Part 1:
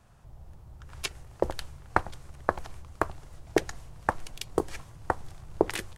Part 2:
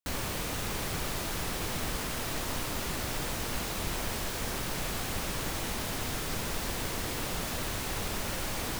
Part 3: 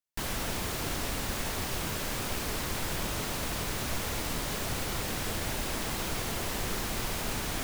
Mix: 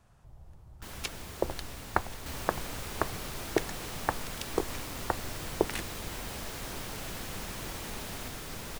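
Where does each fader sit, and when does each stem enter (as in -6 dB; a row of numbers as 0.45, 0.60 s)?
-3.5, -7.0, -11.0 dB; 0.00, 2.20, 0.65 s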